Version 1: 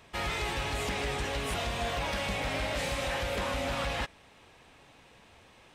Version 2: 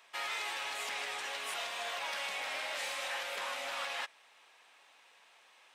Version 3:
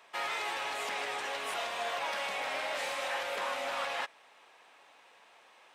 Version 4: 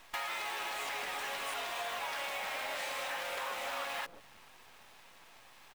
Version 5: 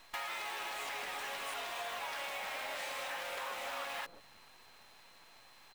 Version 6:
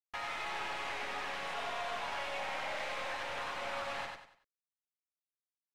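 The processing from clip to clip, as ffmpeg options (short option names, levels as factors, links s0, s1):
-af "highpass=860,volume=0.75"
-af "tiltshelf=f=1400:g=5,volume=1.5"
-filter_complex "[0:a]acrossover=split=160|480[s0][s1][s2];[s1]adelay=140[s3];[s0]adelay=350[s4];[s4][s3][s2]amix=inputs=3:normalize=0,acrusher=bits=8:dc=4:mix=0:aa=0.000001,acompressor=threshold=0.00891:ratio=6,volume=1.88"
-af "aeval=exprs='val(0)+0.000708*sin(2*PI*4100*n/s)':c=same,volume=0.75"
-af "acrusher=bits=6:mix=0:aa=0.000001,adynamicsmooth=sensitivity=4.5:basefreq=3300,aecho=1:1:95|190|285|380:0.631|0.215|0.0729|0.0248"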